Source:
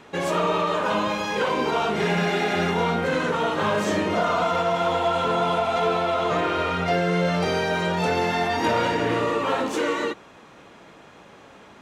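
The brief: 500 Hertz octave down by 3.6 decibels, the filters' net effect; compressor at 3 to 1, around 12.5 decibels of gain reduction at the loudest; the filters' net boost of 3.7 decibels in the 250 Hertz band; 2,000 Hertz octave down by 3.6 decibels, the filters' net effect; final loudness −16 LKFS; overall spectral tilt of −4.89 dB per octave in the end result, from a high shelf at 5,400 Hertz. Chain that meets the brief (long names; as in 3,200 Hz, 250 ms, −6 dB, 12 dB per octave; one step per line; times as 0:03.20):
parametric band 250 Hz +7.5 dB
parametric band 500 Hz −6.5 dB
parametric band 2,000 Hz −3.5 dB
high-shelf EQ 5,400 Hz −7.5 dB
downward compressor 3 to 1, threshold −36 dBFS
level +19 dB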